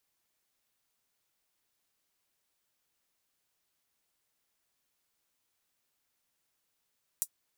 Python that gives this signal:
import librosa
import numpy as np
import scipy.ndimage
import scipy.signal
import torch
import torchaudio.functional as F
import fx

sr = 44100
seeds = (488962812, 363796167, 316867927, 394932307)

y = fx.drum_hat(sr, length_s=0.24, from_hz=7900.0, decay_s=0.07)